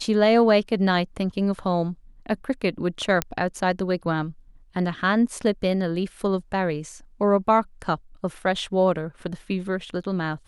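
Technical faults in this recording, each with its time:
0:03.22: click −6 dBFS

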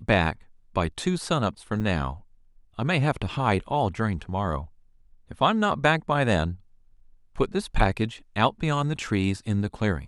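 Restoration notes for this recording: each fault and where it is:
0:01.80–0:01.81: drop-out 7.2 ms

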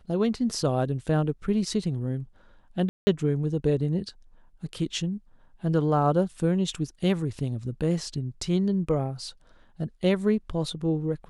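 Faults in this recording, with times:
0:02.89–0:03.07: drop-out 180 ms

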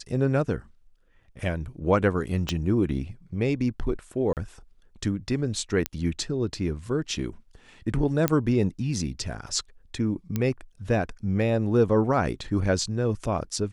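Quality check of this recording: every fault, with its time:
0:02.49: click −13 dBFS
0:04.33–0:04.37: drop-out 38 ms
0:05.86: click −9 dBFS
0:08.28: click −6 dBFS
0:10.36: click −13 dBFS

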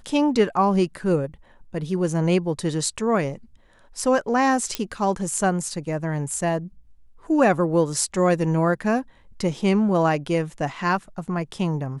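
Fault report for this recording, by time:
0:04.75: click −8 dBFS

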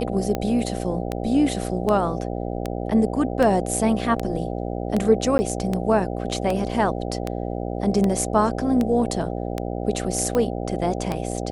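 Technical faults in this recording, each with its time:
mains buzz 60 Hz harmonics 13 −28 dBFS
scratch tick 78 rpm −11 dBFS
0:05.38–0:05.39: drop-out 10 ms

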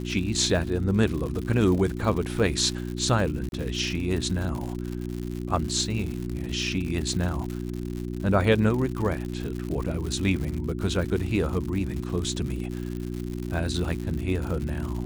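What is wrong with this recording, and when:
surface crackle 140 per second −31 dBFS
mains hum 60 Hz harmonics 6 −32 dBFS
0:03.49–0:03.52: drop-out 31 ms

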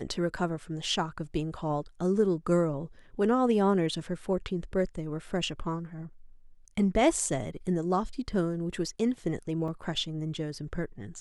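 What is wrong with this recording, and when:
0:09.68: drop-out 2.6 ms

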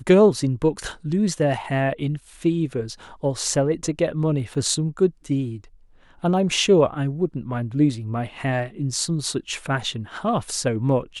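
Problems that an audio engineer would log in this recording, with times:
0:04.54: drop-out 4.6 ms

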